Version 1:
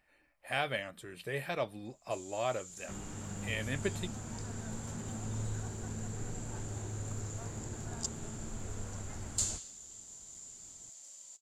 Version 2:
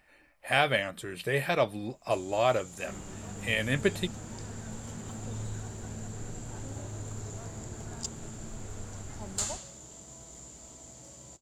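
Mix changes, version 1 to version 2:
speech +8.5 dB; first sound: remove band-pass 7800 Hz, Q 0.59

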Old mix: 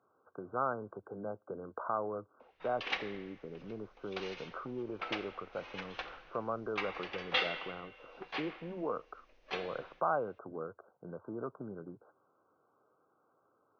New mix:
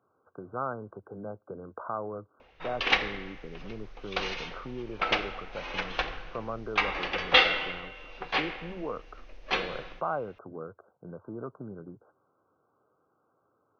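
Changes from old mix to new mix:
background +11.5 dB; master: add low shelf 140 Hz +10 dB

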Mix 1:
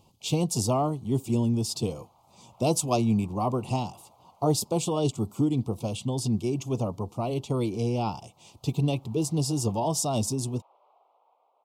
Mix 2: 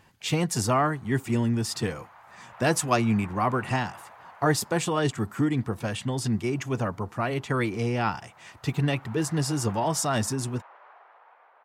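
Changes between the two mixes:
background +7.0 dB; master: remove Butterworth band-stop 1700 Hz, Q 0.78

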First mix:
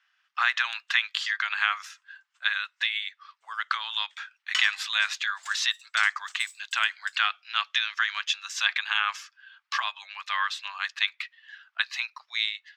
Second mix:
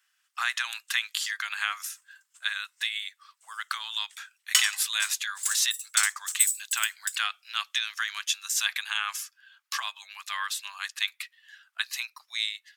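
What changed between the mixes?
speech -6.5 dB; master: remove air absorption 200 m

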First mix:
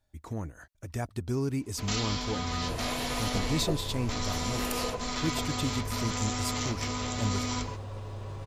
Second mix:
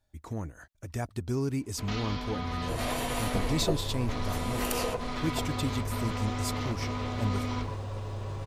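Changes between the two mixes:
first sound: add air absorption 240 m; second sound +3.0 dB

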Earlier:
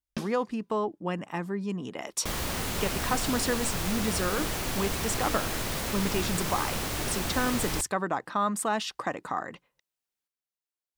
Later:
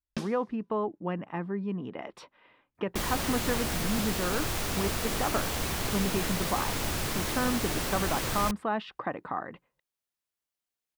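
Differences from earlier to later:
speech: add air absorption 430 m; first sound: add LPF 9900 Hz; second sound: entry +0.70 s

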